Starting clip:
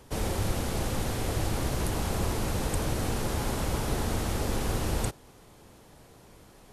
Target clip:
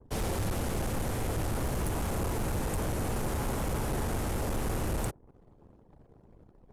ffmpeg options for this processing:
ffmpeg -i in.wav -af "adynamicequalizer=threshold=0.00158:dfrequency=4200:dqfactor=0.98:tfrequency=4200:tqfactor=0.98:attack=5:release=100:ratio=0.375:range=3.5:mode=cutabove:tftype=bell,anlmdn=0.00398,volume=27dB,asoftclip=hard,volume=-27dB" out.wav

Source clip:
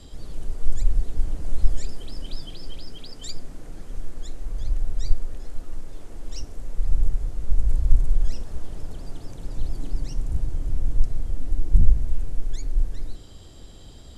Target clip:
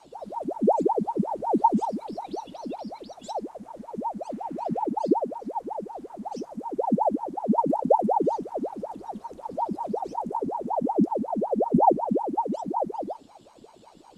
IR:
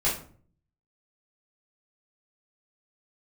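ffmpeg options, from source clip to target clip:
-filter_complex "[0:a]asettb=1/sr,asplit=3[link_01][link_02][link_03];[link_01]atrim=end=4.304[link_04];[link_02]atrim=start=4.3:end=4.86,asetpts=PTS-STARTPTS,afade=type=in:duration=0.004:curve=qsin,afade=type=out:start_time=0.556:duration=0.004:curve=qsin,equalizer=frequency=1600:width=0.78:gain=8.5[link_05];[link_03]atrim=start=4.856[link_06];[link_04][link_05]acrossfade=duration=0.004:curve1=hsin:curve2=qsin[link_07];[link_07][link_06]acrossfade=duration=0.004:curve1=qsin:curve2=hsin,aeval=exprs='val(0)*sin(2*PI*570*n/s+570*0.65/5.4*sin(2*PI*5.4*n/s))':channel_layout=same,volume=-6.5dB"

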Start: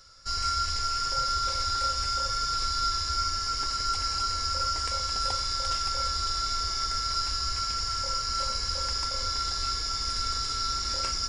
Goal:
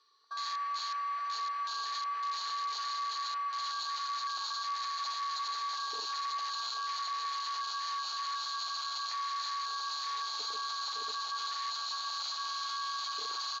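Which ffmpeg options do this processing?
ffmpeg -i in.wav -af "asetrate=36603,aresample=44100,highpass=frequency=290:width=0.5412,highpass=frequency=290:width=1.3066,equalizer=frequency=390:width_type=q:width=4:gain=4,equalizer=frequency=620:width_type=q:width=4:gain=-9,equalizer=frequency=1200:width_type=q:width=4:gain=6,equalizer=frequency=1800:width_type=q:width=4:gain=6,lowpass=frequency=7400:width=0.5412,lowpass=frequency=7400:width=1.3066,aecho=1:1:380|684|927.2|1122|1277:0.631|0.398|0.251|0.158|0.1,alimiter=level_in=4dB:limit=-24dB:level=0:latency=1:release=12,volume=-4dB,afwtdn=0.0112" out.wav

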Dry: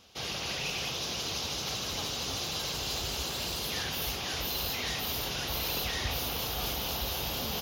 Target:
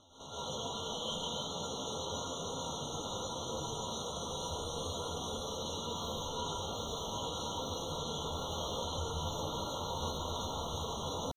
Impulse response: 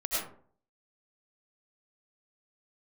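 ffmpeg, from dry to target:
-filter_complex "[0:a]lowpass=7300,highshelf=frequency=3800:gain=-8.5,bandreject=frequency=50:width_type=h:width=6,bandreject=frequency=100:width_type=h:width=6,bandreject=frequency=150:width_type=h:width=6,bandreject=frequency=200:width_type=h:width=6,bandreject=frequency=250:width_type=h:width=6,bandreject=frequency=300:width_type=h:width=6,volume=29.5dB,asoftclip=hard,volume=-29.5dB,atempo=0.67,alimiter=level_in=14dB:limit=-24dB:level=0:latency=1:release=480,volume=-14dB,asetrate=53981,aresample=44100,atempo=0.816958[link_01];[1:a]atrim=start_sample=2205,asetrate=32634,aresample=44100[link_02];[link_01][link_02]afir=irnorm=-1:irlink=0,afftfilt=real='re*eq(mod(floor(b*sr/1024/1400),2),0)':imag='im*eq(mod(floor(b*sr/1024/1400),2),0)':win_size=1024:overlap=0.75"

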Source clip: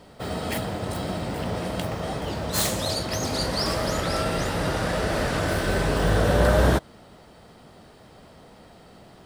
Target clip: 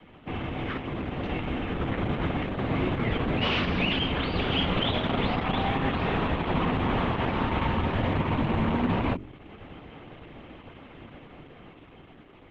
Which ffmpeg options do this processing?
ffmpeg -i in.wav -filter_complex "[0:a]adynamicequalizer=threshold=0.00447:dfrequency=390:dqfactor=7.2:tfrequency=390:tqfactor=7.2:attack=5:release=100:ratio=0.375:range=3.5:mode=boostabove:tftype=bell,asplit=2[link_01][link_02];[link_02]acrusher=bits=5:mode=log:mix=0:aa=0.000001,volume=-11dB[link_03];[link_01][link_03]amix=inputs=2:normalize=0,asetrate=32667,aresample=44100,bandreject=frequency=47.05:width_type=h:width=4,bandreject=frequency=94.1:width_type=h:width=4,bandreject=frequency=141.15:width_type=h:width=4,bandreject=frequency=188.2:width_type=h:width=4,bandreject=frequency=235.25:width_type=h:width=4,bandreject=frequency=282.3:width_type=h:width=4,bandreject=frequency=329.35:width_type=h:width=4,bandreject=frequency=376.4:width_type=h:width=4,bandreject=frequency=423.45:width_type=h:width=4,bandreject=frequency=470.5:width_type=h:width=4,bandreject=frequency=517.55:width_type=h:width=4,bandreject=frequency=564.6:width_type=h:width=4,bandreject=frequency=611.65:width_type=h:width=4,acrossover=split=150|2200[link_04][link_05][link_06];[link_05]asoftclip=type=hard:threshold=-18dB[link_07];[link_04][link_07][link_06]amix=inputs=3:normalize=0,highpass=frequency=240:width_type=q:width=0.5412,highpass=frequency=240:width_type=q:width=1.307,lowpass=frequency=3400:width_type=q:width=0.5176,lowpass=frequency=3400:width_type=q:width=0.7071,lowpass=frequency=3400:width_type=q:width=1.932,afreqshift=-210,alimiter=limit=-22dB:level=0:latency=1:release=397,dynaudnorm=framelen=490:gausssize=7:maxgain=6dB" -ar 48000 -c:a libopus -b:a 10k out.opus

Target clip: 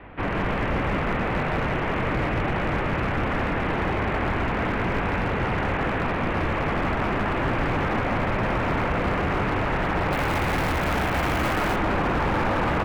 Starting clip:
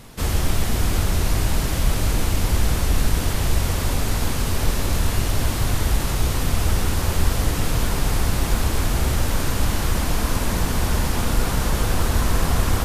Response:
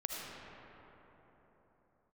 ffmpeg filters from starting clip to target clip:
-filter_complex "[0:a]aecho=1:1:168|336|504|672|840|1008|1176:0.531|0.281|0.149|0.079|0.0419|0.0222|0.0118,highpass=frequency=200:width_type=q:width=0.5412,highpass=frequency=200:width_type=q:width=1.307,lowpass=frequency=2600:width_type=q:width=0.5176,lowpass=frequency=2600:width_type=q:width=0.7071,lowpass=frequency=2600:width_type=q:width=1.932,afreqshift=-170,asoftclip=type=hard:threshold=-24dB,asettb=1/sr,asplit=3[link_01][link_02][link_03];[link_01]atrim=end=10.124[link_04];[link_02]atrim=start=10.12:end=11.76,asetpts=PTS-STARTPTS,afade=type=in:duration=0.004:curve=qsin,afade=type=out:start_time=1.636:duration=0.004:curve=qsin,aemphasis=mode=production:type=75fm[link_05];[link_03]atrim=start=11.756[link_06];[link_04][link_05]acrossfade=duration=0.004:curve1=hsin:curve2=qsin[link_07];[link_07][link_06]acrossfade=duration=0.004:curve1=qsin:curve2=hsin,volume=5dB"

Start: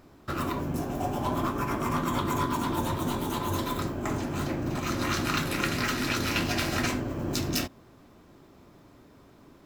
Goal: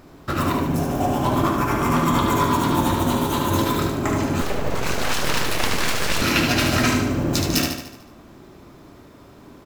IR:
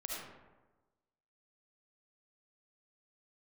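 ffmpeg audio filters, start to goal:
-filter_complex "[0:a]aecho=1:1:74|148|222|296|370|444|518:0.562|0.292|0.152|0.0791|0.0411|0.0214|0.0111,asettb=1/sr,asplit=3[link_01][link_02][link_03];[link_01]atrim=end=4.414[link_04];[link_02]atrim=start=4.41:end=6.22,asetpts=PTS-STARTPTS,afade=type=in:duration=0.004:curve=qsin,afade=type=out:start_time=1.806:duration=0.004:curve=qsin,aeval=exprs='abs(val(0))':channel_layout=same[link_05];[link_03]atrim=start=6.216[link_06];[link_04][link_05]acrossfade=duration=0.004:curve1=hsin:curve2=qsin[link_07];[link_07][link_06]acrossfade=duration=0.004:curve1=qsin:curve2=hsin,volume=7.5dB"

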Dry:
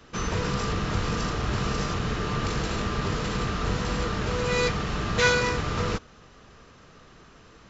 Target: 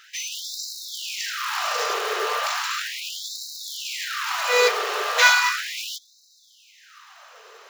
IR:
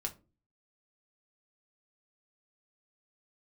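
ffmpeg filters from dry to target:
-af "acrusher=bits=5:mode=log:mix=0:aa=0.000001,afftfilt=real='re*gte(b*sr/1024,350*pow(3800/350,0.5+0.5*sin(2*PI*0.36*pts/sr)))':imag='im*gte(b*sr/1024,350*pow(3800/350,0.5+0.5*sin(2*PI*0.36*pts/sr)))':win_size=1024:overlap=0.75,volume=7.5dB"

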